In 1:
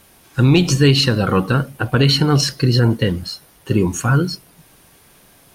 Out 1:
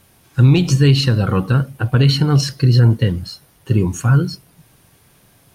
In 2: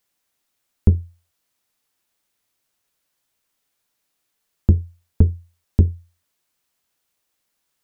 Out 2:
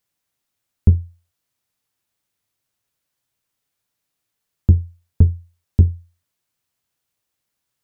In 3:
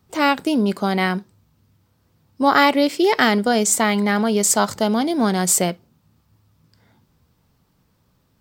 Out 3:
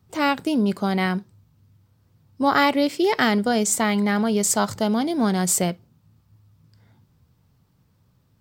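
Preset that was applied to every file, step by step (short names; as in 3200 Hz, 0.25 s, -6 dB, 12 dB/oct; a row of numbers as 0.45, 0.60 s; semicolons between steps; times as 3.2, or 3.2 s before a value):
bell 110 Hz +9 dB 1.2 oct; gain -4 dB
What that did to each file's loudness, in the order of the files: +1.0, +2.0, -3.0 LU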